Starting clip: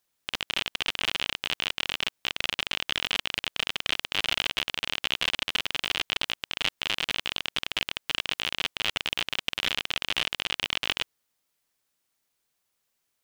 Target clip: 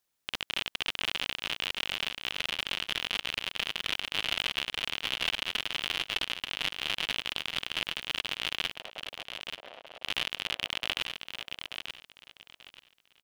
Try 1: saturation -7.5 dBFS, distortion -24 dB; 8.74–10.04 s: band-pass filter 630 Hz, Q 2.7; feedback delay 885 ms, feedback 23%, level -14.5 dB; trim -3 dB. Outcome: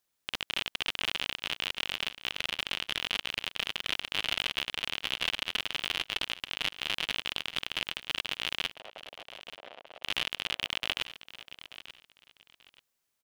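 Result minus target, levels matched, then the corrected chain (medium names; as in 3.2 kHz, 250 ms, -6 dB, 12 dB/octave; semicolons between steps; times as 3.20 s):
echo-to-direct -7.5 dB
saturation -7.5 dBFS, distortion -24 dB; 8.74–10.04 s: band-pass filter 630 Hz, Q 2.7; feedback delay 885 ms, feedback 23%, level -7 dB; trim -3 dB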